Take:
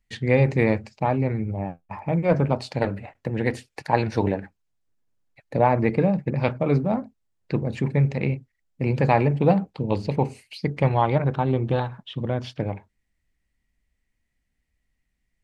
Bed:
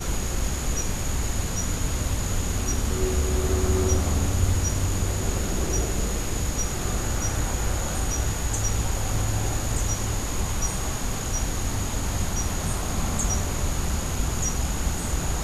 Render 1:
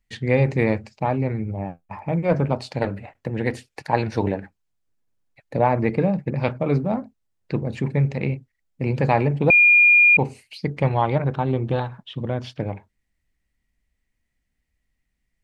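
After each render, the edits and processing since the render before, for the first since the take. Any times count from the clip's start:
0:09.50–0:10.17: beep over 2,420 Hz −10 dBFS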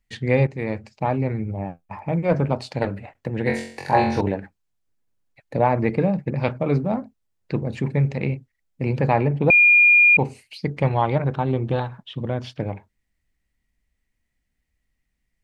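0:00.47–0:01.06: fade in, from −13.5 dB
0:03.44–0:04.21: flutter between parallel walls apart 3.8 metres, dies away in 0.54 s
0:08.98–0:09.50: high-shelf EQ 4,600 Hz −11 dB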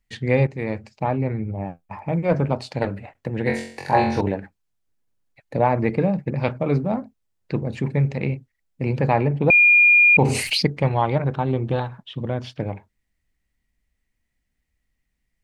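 0:01.04–0:01.60: high-frequency loss of the air 120 metres
0:09.55–0:10.67: envelope flattener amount 70%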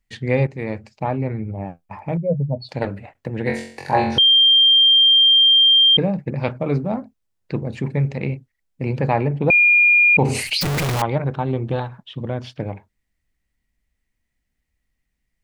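0:02.17–0:02.69: expanding power law on the bin magnitudes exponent 2.7
0:04.18–0:05.97: beep over 3,180 Hz −9.5 dBFS
0:10.61–0:11.02: sign of each sample alone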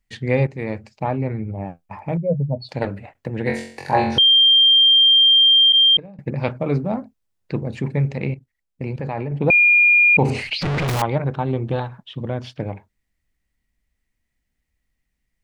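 0:05.72–0:06.19: noise gate −15 dBFS, range −20 dB
0:08.34–0:09.32: output level in coarse steps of 13 dB
0:10.30–0:10.88: low-pass filter 3,300 Hz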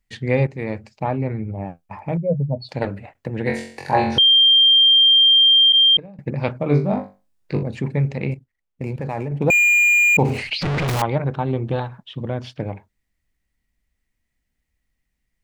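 0:06.68–0:07.63: flutter between parallel walls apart 3.5 metres, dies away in 0.3 s
0:08.31–0:10.38: running median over 9 samples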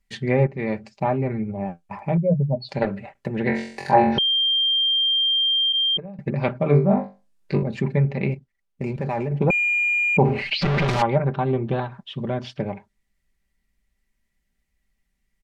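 treble cut that deepens with the level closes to 1,800 Hz, closed at −15.5 dBFS
comb filter 5.1 ms, depth 54%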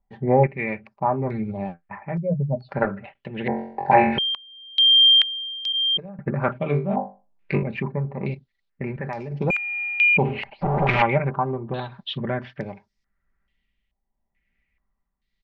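shaped tremolo triangle 0.84 Hz, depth 60%
low-pass on a step sequencer 2.3 Hz 830–5,200 Hz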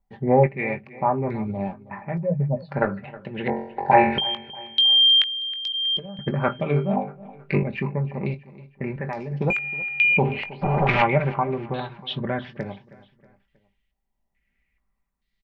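double-tracking delay 20 ms −12 dB
repeating echo 318 ms, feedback 44%, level −19 dB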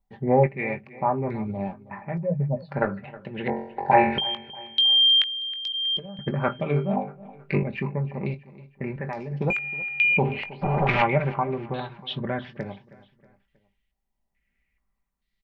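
level −2 dB

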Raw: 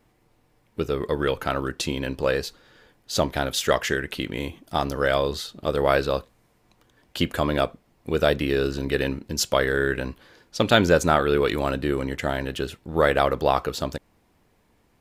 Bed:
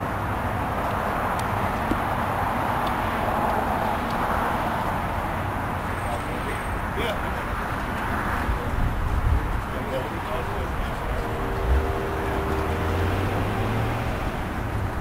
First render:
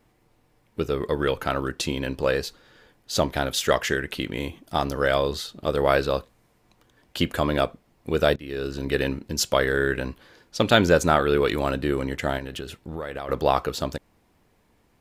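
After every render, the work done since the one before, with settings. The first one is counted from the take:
0:08.36–0:08.94: fade in, from −20.5 dB
0:12.38–0:13.29: downward compressor, threshold −29 dBFS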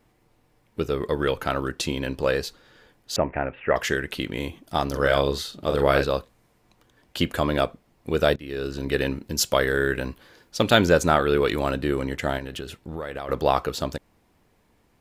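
0:03.16–0:03.76: Chebyshev low-pass with heavy ripple 2,700 Hz, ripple 3 dB
0:04.89–0:06.05: double-tracking delay 43 ms −6 dB
0:09.15–0:10.86: high-shelf EQ 11,000 Hz +7 dB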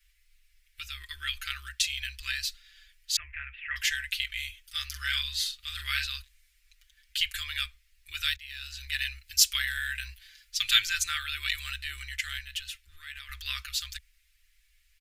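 inverse Chebyshev band-stop filter 140–870 Hz, stop band 50 dB
comb filter 5.8 ms, depth 94%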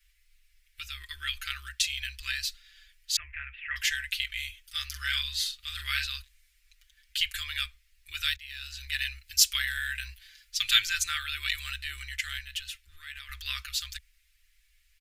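no processing that can be heard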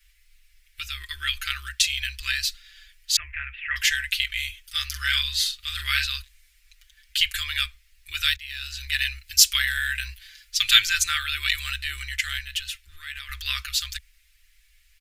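level +6.5 dB
brickwall limiter −1 dBFS, peak gain reduction 1 dB

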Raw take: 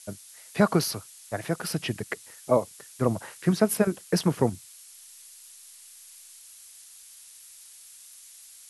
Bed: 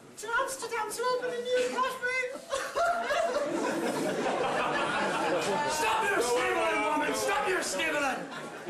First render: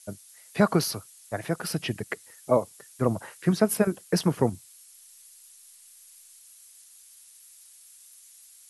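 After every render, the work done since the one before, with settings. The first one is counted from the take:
broadband denoise 6 dB, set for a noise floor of −50 dBFS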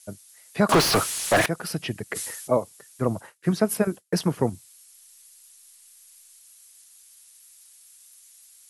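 0:00.69–0:01.46: mid-hump overdrive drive 41 dB, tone 2,700 Hz, clips at −9.5 dBFS
0:02.07–0:02.53: level that may fall only so fast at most 38 dB per second
0:03.06–0:04.49: downward expander −39 dBFS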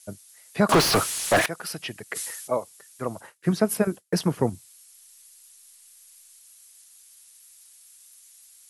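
0:01.39–0:03.20: low-shelf EQ 420 Hz −11 dB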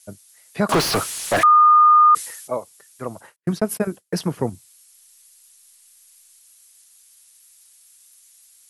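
0:01.43–0:02.15: beep over 1,220 Hz −8.5 dBFS
0:03.36–0:03.82: noise gate −33 dBFS, range −37 dB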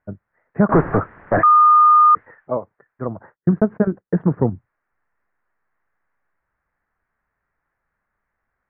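Butterworth low-pass 1,800 Hz 48 dB per octave
low-shelf EQ 390 Hz +8.5 dB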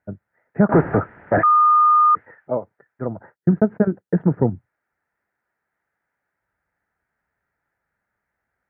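high-pass filter 66 Hz
notch filter 1,100 Hz, Q 5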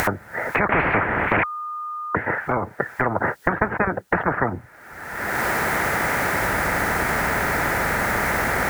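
upward compression, threshold −20 dBFS
every bin compressed towards the loudest bin 10 to 1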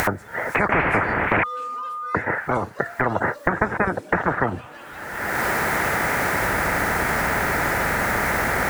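mix in bed −12.5 dB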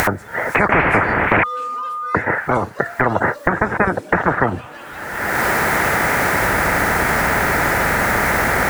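level +5 dB
brickwall limiter −1 dBFS, peak gain reduction 2.5 dB

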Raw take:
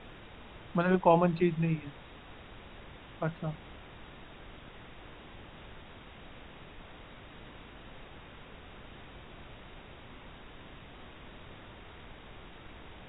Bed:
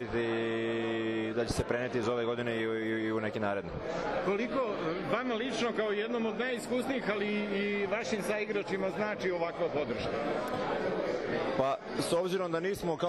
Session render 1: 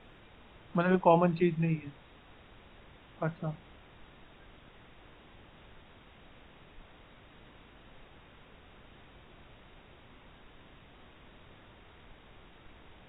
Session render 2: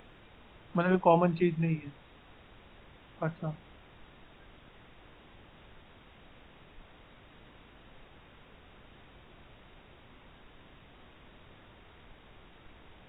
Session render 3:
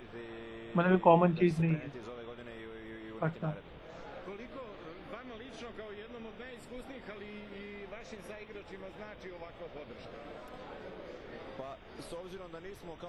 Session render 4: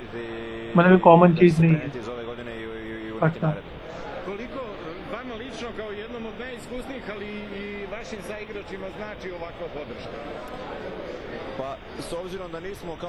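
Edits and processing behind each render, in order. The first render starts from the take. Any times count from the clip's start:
noise reduction from a noise print 6 dB
upward compression, threshold −54 dBFS
mix in bed −14.5 dB
level +12 dB; brickwall limiter −2 dBFS, peak gain reduction 3 dB

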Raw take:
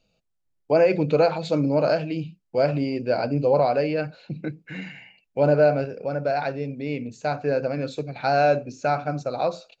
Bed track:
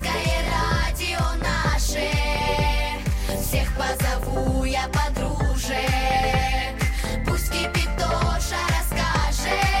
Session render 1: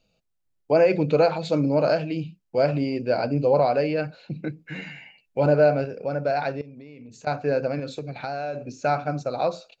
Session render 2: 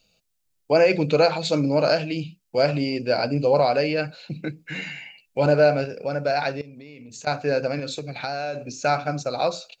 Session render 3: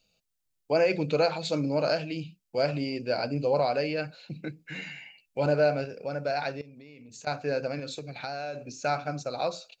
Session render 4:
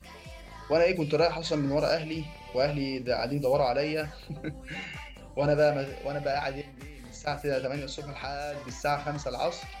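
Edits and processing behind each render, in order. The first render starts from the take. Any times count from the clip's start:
0:04.58–0:05.46: double-tracking delay 13 ms −5 dB; 0:06.61–0:07.27: downward compressor 16 to 1, threshold −39 dBFS; 0:07.79–0:08.68: downward compressor 10 to 1, threshold −26 dBFS
high-shelf EQ 2,400 Hz +12 dB
level −6.5 dB
mix in bed track −23 dB

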